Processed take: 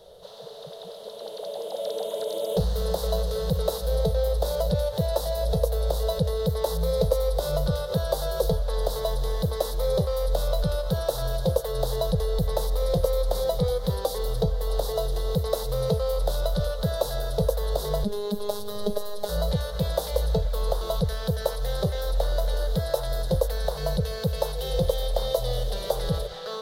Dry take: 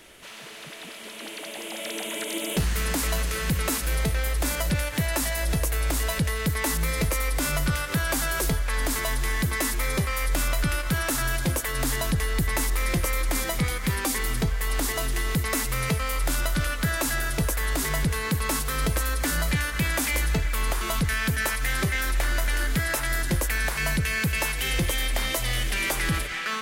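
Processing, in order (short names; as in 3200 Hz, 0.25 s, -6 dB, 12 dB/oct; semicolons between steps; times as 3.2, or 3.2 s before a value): EQ curve 190 Hz 0 dB, 270 Hz -27 dB, 480 Hz +14 dB, 1600 Hz -15 dB, 2400 Hz -28 dB, 3800 Hz +2 dB, 7400 Hz -15 dB, 13000 Hz -8 dB; 18.04–19.29 robotiser 206 Hz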